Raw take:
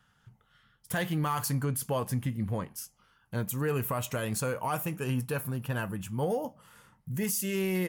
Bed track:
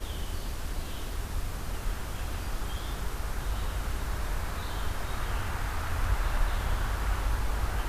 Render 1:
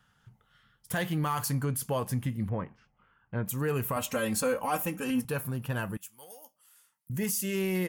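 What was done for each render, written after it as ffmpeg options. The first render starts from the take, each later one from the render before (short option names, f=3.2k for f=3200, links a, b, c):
-filter_complex "[0:a]asettb=1/sr,asplit=3[a][b][c];[a]atrim=end=2.494[d];[b]atrim=start=2.49:end=3.46,asetpts=PTS-STARTPTS,afade=t=in:d=0.004:c=qsin,afade=t=out:st=0.966:d=0.004:c=qsin,lowpass=f=2.5k:w=0.5412,lowpass=f=2.5k:w=1.3066[e];[c]atrim=start=3.456[f];[d][e]acrossfade=d=0.004:c1=hsin:c2=qsin[g];[g][f]acrossfade=d=0.004:c1=qsin:c2=hsin,asettb=1/sr,asplit=3[h][i][j];[h]atrim=end=3.964[k];[i]atrim=start=3.96:end=5.25,asetpts=PTS-STARTPTS,afade=t=in:d=0.004:c=qsin,afade=t=out:st=1.286:d=0.004:c=qsin,aecho=1:1:3.8:0.95,atrim=end_sample=56889[l];[j]atrim=start=5.246[m];[k][l]acrossfade=d=0.004:c1=hsin:c2=qsin[n];[n][m]acrossfade=d=0.004:c1=qsin:c2=hsin,asettb=1/sr,asplit=3[o][p][q];[o]atrim=end=5.974[r];[p]atrim=start=5.97:end=7.1,asetpts=PTS-STARTPTS,afade=t=in:d=0.004:c=qsin,afade=t=out:st=1.126:d=0.004:c=qsin,aderivative[s];[q]atrim=start=7.096[t];[r][s]acrossfade=d=0.004:c1=hsin:c2=qsin[u];[u][t]acrossfade=d=0.004:c1=qsin:c2=hsin"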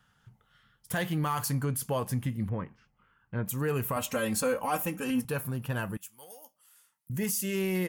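-filter_complex "[0:a]asettb=1/sr,asplit=3[a][b][c];[a]atrim=end=2.504[d];[b]atrim=start=2.5:end=3.39,asetpts=PTS-STARTPTS,afade=t=in:d=0.004:c=qsin,afade=t=out:st=0.886:d=0.004:c=qsin,equalizer=f=690:t=o:w=0.77:g=-5.5[e];[c]atrim=start=3.386[f];[d][e]acrossfade=d=0.004:c1=hsin:c2=qsin[g];[g][f]acrossfade=d=0.004:c1=qsin:c2=hsin"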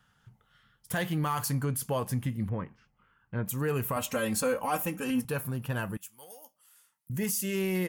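-af anull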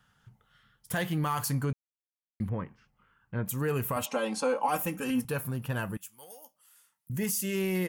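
-filter_complex "[0:a]asplit=3[a][b][c];[a]afade=t=out:st=4.05:d=0.02[d];[b]highpass=f=220:w=0.5412,highpass=f=220:w=1.3066,equalizer=f=850:t=q:w=4:g=10,equalizer=f=1.8k:t=q:w=4:g=-7,equalizer=f=7.4k:t=q:w=4:g=-8,lowpass=f=8.4k:w=0.5412,lowpass=f=8.4k:w=1.3066,afade=t=in:st=4.05:d=0.02,afade=t=out:st=4.67:d=0.02[e];[c]afade=t=in:st=4.67:d=0.02[f];[d][e][f]amix=inputs=3:normalize=0,asplit=3[g][h][i];[g]atrim=end=1.73,asetpts=PTS-STARTPTS,afade=t=out:st=1.726:d=0.004:c=hsin[j];[h]atrim=start=1.73:end=2.4,asetpts=PTS-STARTPTS,volume=0[k];[i]atrim=start=2.4,asetpts=PTS-STARTPTS,afade=t=in:d=0.004:c=hsin[l];[j][k][l]concat=n=3:v=0:a=1"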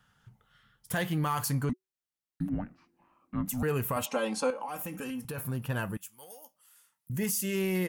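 -filter_complex "[0:a]asettb=1/sr,asplit=3[a][b][c];[a]atrim=end=1.694[d];[b]atrim=start=1.69:end=3.63,asetpts=PTS-STARTPTS,afade=t=in:d=0.004:c=qsin,afade=t=out:st=1.936:d=0.004:c=qsin,afreqshift=-380[e];[c]atrim=start=3.626[f];[d][e]acrossfade=d=0.004:c1=hsin:c2=qsin[g];[g][f]acrossfade=d=0.004:c1=qsin:c2=hsin,asettb=1/sr,asplit=3[h][i][j];[h]atrim=end=4.504[k];[i]atrim=start=4.5:end=5.38,asetpts=PTS-STARTPTS,afade=t=in:d=0.004:c=qsin,afade=t=out:st=0.876:d=0.004:c=qsin,acompressor=threshold=-33dB:ratio=12:attack=3.2:release=140:knee=1:detection=peak[l];[j]atrim=start=5.376[m];[k][l]acrossfade=d=0.004:c1=hsin:c2=qsin[n];[n][m]acrossfade=d=0.004:c1=qsin:c2=hsin"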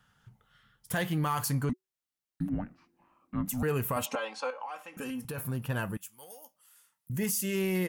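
-filter_complex "[0:a]asettb=1/sr,asplit=3[a][b][c];[a]atrim=end=4.154[d];[b]atrim=start=4.15:end=4.97,asetpts=PTS-STARTPTS,afade=t=in:d=0.004:c=qsin,afade=t=out:st=0.816:d=0.004:c=qsin,highpass=680,lowpass=4.1k[e];[c]atrim=start=4.966[f];[d][e]acrossfade=d=0.004:c1=hsin:c2=qsin[g];[g][f]acrossfade=d=0.004:c1=qsin:c2=hsin"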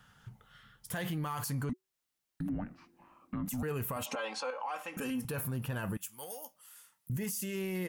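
-filter_complex "[0:a]asplit=2[a][b];[b]acompressor=threshold=-40dB:ratio=6,volume=-1dB[c];[a][c]amix=inputs=2:normalize=0,alimiter=level_in=4.5dB:limit=-24dB:level=0:latency=1:release=45,volume=-4.5dB"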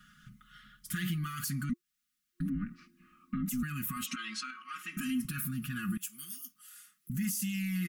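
-af "afftfilt=real='re*(1-between(b*sr/4096,350,1100))':imag='im*(1-between(b*sr/4096,350,1100))':win_size=4096:overlap=0.75,aecho=1:1:4.8:0.9"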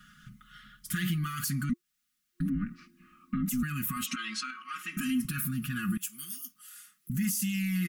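-af "volume=3.5dB"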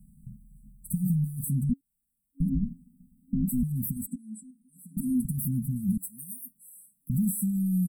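-af "afftfilt=real='re*(1-between(b*sr/4096,270,7700))':imag='im*(1-between(b*sr/4096,270,7700))':win_size=4096:overlap=0.75,lowshelf=f=150:g=11"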